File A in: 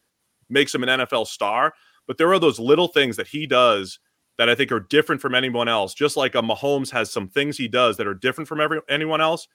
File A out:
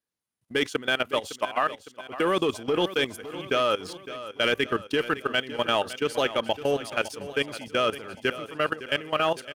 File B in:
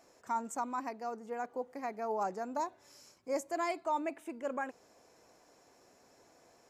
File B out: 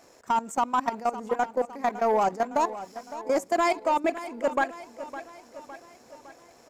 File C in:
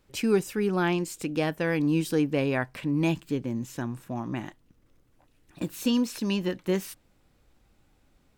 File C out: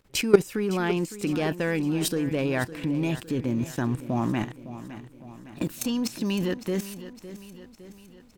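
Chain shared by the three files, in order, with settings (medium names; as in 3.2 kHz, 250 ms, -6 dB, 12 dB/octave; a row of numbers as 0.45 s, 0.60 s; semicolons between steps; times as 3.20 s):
waveshaping leveller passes 1; level held to a coarse grid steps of 17 dB; feedback delay 559 ms, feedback 54%, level -14 dB; normalise loudness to -27 LUFS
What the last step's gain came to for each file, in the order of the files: -6.0 dB, +12.0 dB, +8.5 dB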